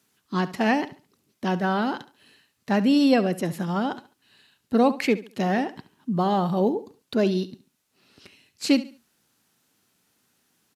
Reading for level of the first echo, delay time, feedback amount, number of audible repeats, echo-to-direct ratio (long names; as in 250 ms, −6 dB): −16.0 dB, 70 ms, 30%, 2, −15.5 dB